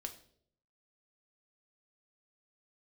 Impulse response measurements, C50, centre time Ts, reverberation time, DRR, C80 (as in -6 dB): 12.5 dB, 9 ms, 0.60 s, 5.0 dB, 16.0 dB